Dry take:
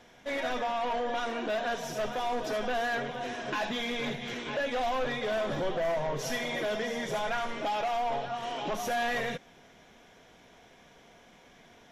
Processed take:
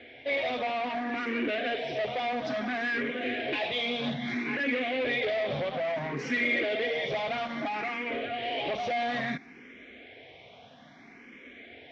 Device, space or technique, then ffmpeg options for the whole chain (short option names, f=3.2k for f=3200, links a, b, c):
barber-pole phaser into a guitar amplifier: -filter_complex "[0:a]asplit=2[a][b];[b]afreqshift=0.6[c];[a][c]amix=inputs=2:normalize=1,asoftclip=type=tanh:threshold=-34.5dB,highpass=86,equalizer=f=180:t=q:w=4:g=-7,equalizer=f=260:t=q:w=4:g=6,equalizer=f=960:t=q:w=4:g=-9,equalizer=f=1.4k:t=q:w=4:g=-5,equalizer=f=2.2k:t=q:w=4:g=8,lowpass=f=4.1k:w=0.5412,lowpass=f=4.1k:w=1.3066,volume=8.5dB"